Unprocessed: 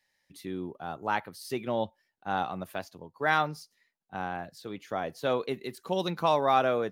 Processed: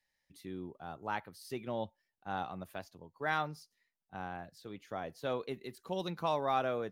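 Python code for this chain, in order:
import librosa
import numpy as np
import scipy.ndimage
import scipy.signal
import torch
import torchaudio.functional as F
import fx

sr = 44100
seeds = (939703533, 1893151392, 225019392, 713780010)

y = fx.low_shelf(x, sr, hz=70.0, db=12.0)
y = y * 10.0 ** (-8.0 / 20.0)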